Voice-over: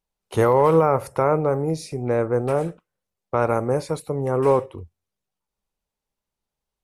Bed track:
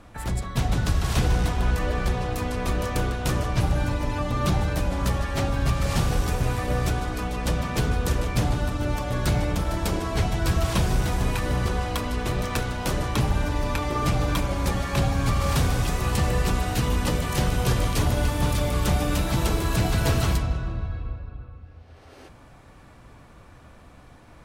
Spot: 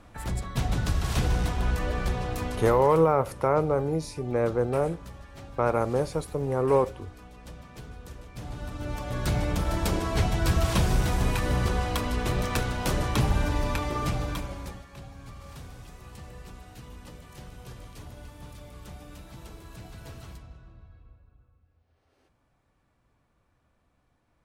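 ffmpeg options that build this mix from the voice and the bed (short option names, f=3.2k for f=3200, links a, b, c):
-filter_complex "[0:a]adelay=2250,volume=-4dB[a];[1:a]volume=15dB,afade=t=out:st=2.46:d=0.54:silence=0.158489,afade=t=in:st=8.33:d=1.42:silence=0.11885,afade=t=out:st=13.53:d=1.33:silence=0.0944061[b];[a][b]amix=inputs=2:normalize=0"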